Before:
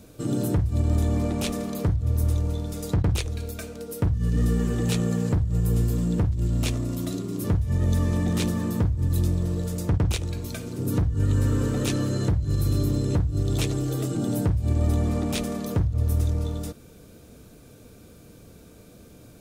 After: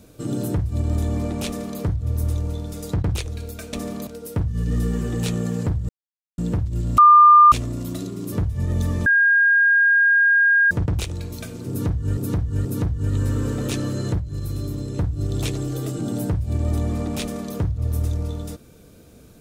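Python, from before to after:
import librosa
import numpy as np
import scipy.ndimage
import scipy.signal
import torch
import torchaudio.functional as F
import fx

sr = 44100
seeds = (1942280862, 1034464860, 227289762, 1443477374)

y = fx.edit(x, sr, fx.duplicate(start_s=1.46, length_s=0.34, to_s=3.73),
    fx.silence(start_s=5.55, length_s=0.49),
    fx.insert_tone(at_s=6.64, length_s=0.54, hz=1200.0, db=-6.5),
    fx.bleep(start_s=8.18, length_s=1.65, hz=1620.0, db=-12.5),
    fx.repeat(start_s=10.81, length_s=0.48, count=3),
    fx.clip_gain(start_s=12.36, length_s=0.79, db=-4.5), tone=tone)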